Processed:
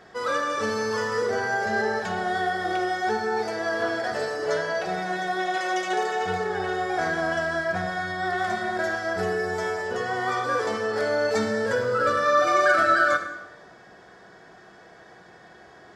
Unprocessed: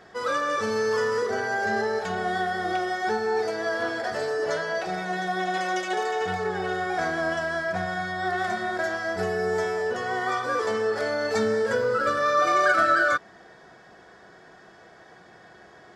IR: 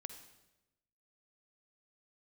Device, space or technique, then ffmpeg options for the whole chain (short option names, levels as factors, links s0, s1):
bathroom: -filter_complex "[1:a]atrim=start_sample=2205[s0];[0:a][s0]afir=irnorm=-1:irlink=0,volume=1.78"